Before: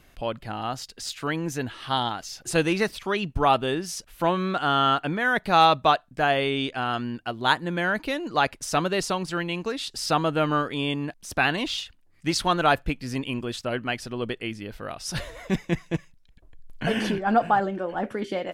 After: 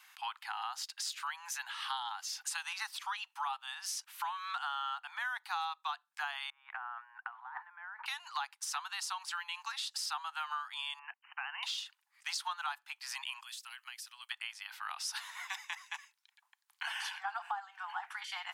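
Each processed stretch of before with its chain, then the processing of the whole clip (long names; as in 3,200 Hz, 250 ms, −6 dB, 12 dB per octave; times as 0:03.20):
0:06.50–0:08.06: low-pass filter 1,600 Hz 24 dB per octave + compressor whose output falls as the input rises −38 dBFS + multiband upward and downward expander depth 40%
0:10.99–0:11.63: downward expander −47 dBFS + downward compressor, threshold −30 dBFS + linear-phase brick-wall low-pass 3,100 Hz
0:13.43–0:14.31: first-order pre-emphasis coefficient 0.97 + downward compressor 12 to 1, threshold −42 dBFS
whole clip: Butterworth high-pass 810 Hz 96 dB per octave; dynamic equaliser 2,200 Hz, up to −5 dB, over −42 dBFS, Q 1.7; downward compressor 6 to 1, threshold −37 dBFS; level +1 dB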